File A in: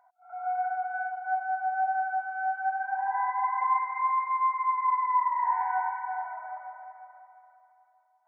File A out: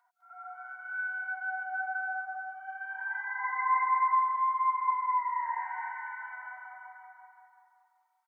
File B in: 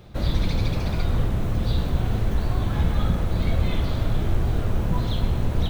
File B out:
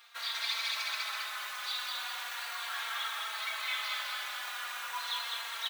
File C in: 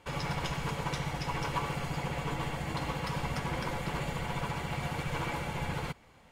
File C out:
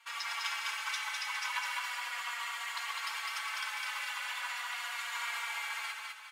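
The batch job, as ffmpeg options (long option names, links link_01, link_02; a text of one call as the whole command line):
ffmpeg -i in.wav -filter_complex "[0:a]highpass=frequency=1200:width=0.5412,highpass=frequency=1200:width=1.3066,asplit=2[link_01][link_02];[link_02]aecho=0:1:204|408|612|816|1020|1224:0.708|0.311|0.137|0.0603|0.0265|0.0117[link_03];[link_01][link_03]amix=inputs=2:normalize=0,asplit=2[link_04][link_05];[link_05]adelay=3.8,afreqshift=-0.38[link_06];[link_04][link_06]amix=inputs=2:normalize=1,volume=5dB" out.wav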